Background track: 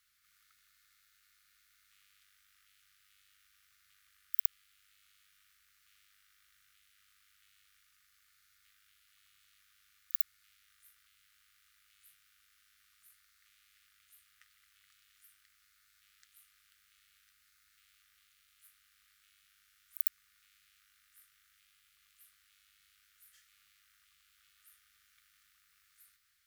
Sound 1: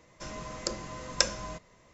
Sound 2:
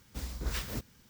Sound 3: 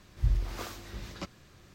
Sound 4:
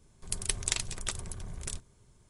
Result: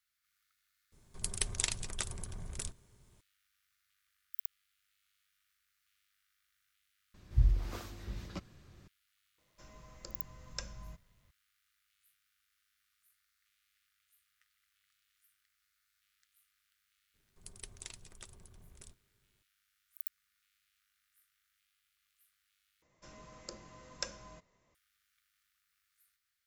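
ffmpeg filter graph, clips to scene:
-filter_complex "[4:a]asplit=2[a][b];[1:a]asplit=2[c][d];[0:a]volume=-9.5dB[e];[3:a]lowshelf=f=290:g=7.5[f];[c]asubboost=boost=12:cutoff=140[g];[b]equalizer=f=330:w=1.1:g=3[h];[e]asplit=3[i][j][k];[i]atrim=end=7.144[l];[f]atrim=end=1.74,asetpts=PTS-STARTPTS,volume=-7dB[m];[j]atrim=start=8.876:end=22.824[n];[d]atrim=end=1.93,asetpts=PTS-STARTPTS,volume=-14dB[o];[k]atrim=start=24.746[p];[a]atrim=end=2.29,asetpts=PTS-STARTPTS,volume=-3dB,afade=t=in:d=0.004:c=hsin,afade=t=out:st=2.286:d=0.004:c=hsin,adelay=920[q];[g]atrim=end=1.93,asetpts=PTS-STARTPTS,volume=-17dB,afade=t=in:d=0.004:c=hsin,afade=t=out:st=1.926:d=0.004:c=hsin,adelay=413658S[r];[h]atrim=end=2.29,asetpts=PTS-STARTPTS,volume=-17.5dB,afade=t=in:d=0.004:c=hsin,afade=t=out:st=2.286:d=0.004:c=hsin,adelay=17140[s];[l][m]acrossfade=d=0.004:c1=hsin:c2=hsin[t];[t][n]acrossfade=d=0.004:c1=hsin:c2=hsin[u];[u][o]acrossfade=d=0.004:c1=hsin:c2=hsin[v];[v][p]acrossfade=d=0.004:c1=hsin:c2=hsin[w];[w][q][r][s]amix=inputs=4:normalize=0"

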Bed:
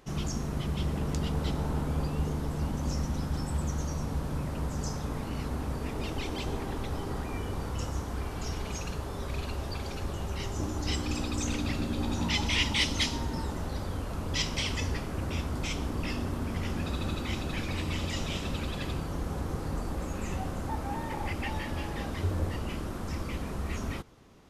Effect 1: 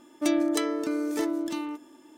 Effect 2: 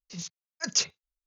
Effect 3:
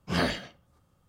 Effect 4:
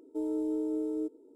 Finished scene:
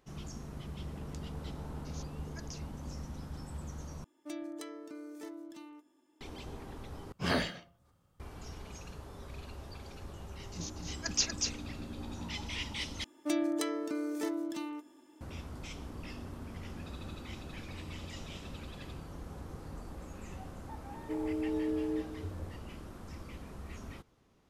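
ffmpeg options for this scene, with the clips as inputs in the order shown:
-filter_complex "[2:a]asplit=2[a][b];[1:a]asplit=2[c][d];[0:a]volume=-11.5dB[e];[a]acompressor=threshold=-35dB:ratio=6:attack=3.2:release=140:knee=1:detection=peak[f];[3:a]bandreject=f=172:t=h:w=4,bandreject=f=344:t=h:w=4,bandreject=f=516:t=h:w=4,bandreject=f=688:t=h:w=4,bandreject=f=860:t=h:w=4,bandreject=f=1.032k:t=h:w=4,bandreject=f=1.204k:t=h:w=4[g];[b]aecho=1:1:238:0.631[h];[d]highpass=49[i];[4:a]asplit=2[j][k];[k]adelay=443.1,volume=-11dB,highshelf=f=4k:g=-9.97[l];[j][l]amix=inputs=2:normalize=0[m];[e]asplit=4[n][o][p][q];[n]atrim=end=4.044[r];[c]atrim=end=2.17,asetpts=PTS-STARTPTS,volume=-17.5dB[s];[o]atrim=start=6.206:end=7.124[t];[g]atrim=end=1.08,asetpts=PTS-STARTPTS,volume=-3.5dB[u];[p]atrim=start=8.196:end=13.044[v];[i]atrim=end=2.17,asetpts=PTS-STARTPTS,volume=-7dB[w];[q]atrim=start=15.206[x];[f]atrim=end=1.26,asetpts=PTS-STARTPTS,volume=-10.5dB,afade=t=in:d=0.004:c=hsin,afade=t=out:st=1.256:d=0.004:c=hsin,adelay=1750[y];[h]atrim=end=1.26,asetpts=PTS-STARTPTS,volume=-5dB,afade=t=in:d=0.004:c=hsin,afade=t=out:st=1.256:d=0.004:c=hsin,adelay=459522S[z];[m]atrim=end=1.35,asetpts=PTS-STARTPTS,volume=-3dB,afade=t=in:d=0.004:c=hsin,afade=t=out:st=1.346:d=0.004:c=hsin,adelay=20940[aa];[r][s]acrossfade=d=0.004:c1=hsin:c2=hsin[ab];[ab][t]acrossfade=d=0.004:c1=hsin:c2=hsin[ac];[ac][u]acrossfade=d=0.004:c1=hsin:c2=hsin[ad];[ad][v]acrossfade=d=0.004:c1=hsin:c2=hsin[ae];[ae][w]acrossfade=d=0.004:c1=hsin:c2=hsin[af];[af][x]acrossfade=d=0.004:c1=hsin:c2=hsin[ag];[ag][y][z][aa]amix=inputs=4:normalize=0"

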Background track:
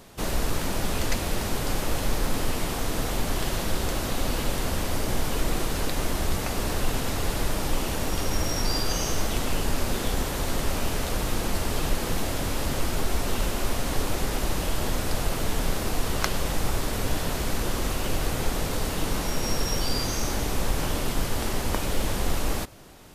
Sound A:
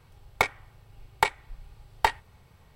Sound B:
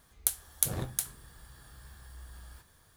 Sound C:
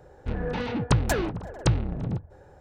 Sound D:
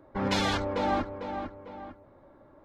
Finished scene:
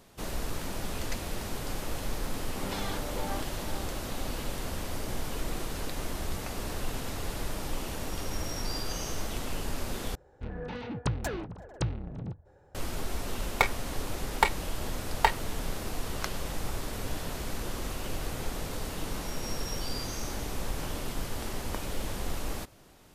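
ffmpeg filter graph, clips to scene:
-filter_complex "[0:a]volume=-8dB,asplit=2[a][b];[a]atrim=end=10.154[c];[3:a]atrim=end=2.6,asetpts=PTS-STARTPTS,volume=-8.5dB[d];[b]atrim=start=12.746[e];[4:a]atrim=end=2.64,asetpts=PTS-STARTPTS,volume=-10dB,afade=t=in:d=0.004:c=hsin,afade=t=out:st=2.636:d=0.004:c=hsin,adelay=2400[f];[1:a]atrim=end=2.75,asetpts=PTS-STARTPTS,volume=-1dB,afade=t=in:d=0.004:c=hsin,afade=t=out:st=2.746:d=0.004:c=hsin,adelay=13200[g];[c][d]acrossfade=d=0.004:c1=hsin:c2=hsin[h];[h][e]acrossfade=d=0.004:c1=hsin:c2=hsin[i];[i][f][g]amix=inputs=3:normalize=0"

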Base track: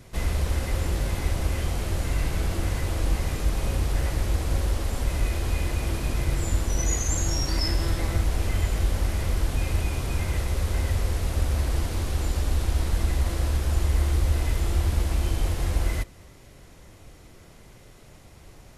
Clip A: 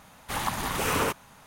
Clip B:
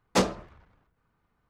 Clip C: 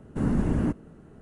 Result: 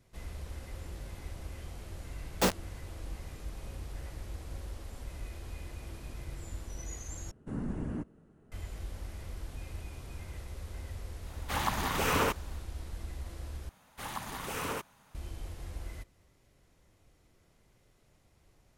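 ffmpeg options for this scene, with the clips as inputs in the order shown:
-filter_complex "[1:a]asplit=2[a][b];[0:a]volume=-17dB[c];[2:a]acrusher=bits=3:mix=0:aa=0.000001[d];[a]equalizer=f=10k:w=1.4:g=-5.5[e];[c]asplit=3[f][g][h];[f]atrim=end=7.314[i];[3:a]atrim=end=1.21,asetpts=PTS-STARTPTS,volume=-11.5dB[j];[g]atrim=start=8.516:end=13.694[k];[b]atrim=end=1.46,asetpts=PTS-STARTPTS,volume=-10dB[l];[h]atrim=start=15.146[m];[d]atrim=end=1.49,asetpts=PTS-STARTPTS,volume=-5dB,afade=t=in:d=0.004:c=hsin,afade=t=out:st=1.486:d=0.004:c=hsin,adelay=2260[n];[e]atrim=end=1.46,asetpts=PTS-STARTPTS,volume=-2dB,afade=t=in:d=0.1,afade=t=out:st=1.36:d=0.1,adelay=11200[o];[i][j]acrossfade=d=0.004:c1=hsin:c2=hsin[p];[p][k]acrossfade=d=0.004:c1=hsin:c2=hsin[q];[q][l]acrossfade=d=0.004:c1=hsin:c2=hsin[r];[r][m]acrossfade=d=0.004:c1=hsin:c2=hsin[s];[s][n][o]amix=inputs=3:normalize=0"

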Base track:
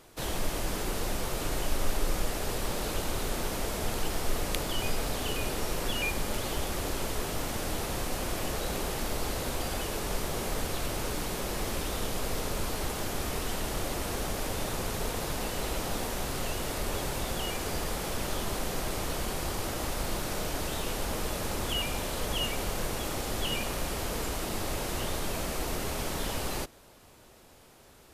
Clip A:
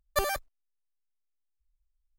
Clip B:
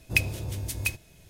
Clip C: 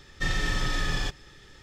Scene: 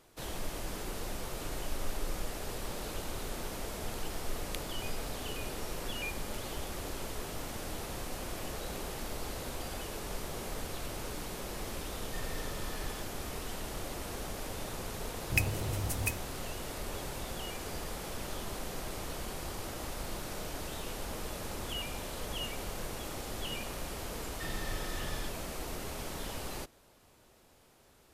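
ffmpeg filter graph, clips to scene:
-filter_complex "[3:a]asplit=2[a][b];[0:a]volume=-7dB[c];[a]asoftclip=type=hard:threshold=-20.5dB[d];[2:a]equalizer=f=3.6k:t=o:w=0.77:g=-12[e];[d]atrim=end=1.62,asetpts=PTS-STARTPTS,volume=-17dB,afade=t=in:d=0.004:c=hsin,afade=t=out:st=1.616:d=0.004:c=hsin,adelay=11920[f];[e]atrim=end=1.29,asetpts=PTS-STARTPTS,volume=-2dB,afade=t=in:d=0.004:c=hsin,afade=t=out:st=1.286:d=0.004:c=hsin,adelay=15210[g];[b]atrim=end=1.62,asetpts=PTS-STARTPTS,volume=-13.5dB,afade=t=in:d=0.004:c=hsin,afade=t=out:st=1.616:d=0.004:c=hsin,adelay=24190[h];[c][f][g][h]amix=inputs=4:normalize=0"

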